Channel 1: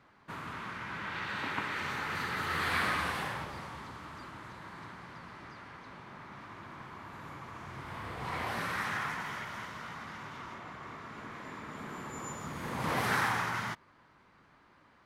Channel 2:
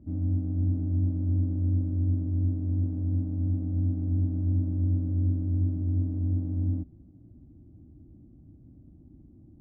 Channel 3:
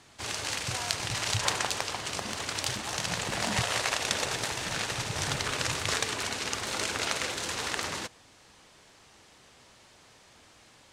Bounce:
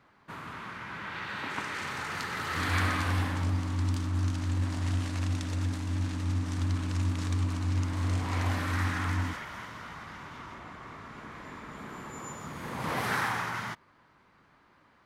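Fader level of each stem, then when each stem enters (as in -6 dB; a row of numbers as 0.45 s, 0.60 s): 0.0 dB, -3.5 dB, -14.5 dB; 0.00 s, 2.50 s, 1.30 s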